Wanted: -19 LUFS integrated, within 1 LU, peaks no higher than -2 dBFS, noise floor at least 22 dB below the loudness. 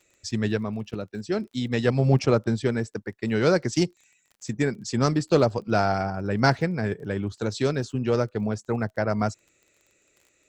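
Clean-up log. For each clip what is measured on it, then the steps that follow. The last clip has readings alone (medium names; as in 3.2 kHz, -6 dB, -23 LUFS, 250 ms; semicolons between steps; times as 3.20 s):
tick rate 27 per s; loudness -25.5 LUFS; peak level -5.0 dBFS; loudness target -19.0 LUFS
-> de-click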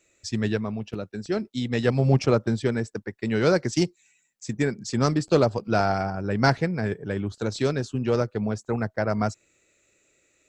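tick rate 0 per s; loudness -25.5 LUFS; peak level -5.0 dBFS; loudness target -19.0 LUFS
-> trim +6.5 dB; peak limiter -2 dBFS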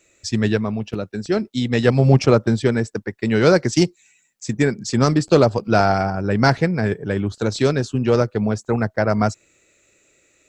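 loudness -19.5 LUFS; peak level -2.0 dBFS; noise floor -61 dBFS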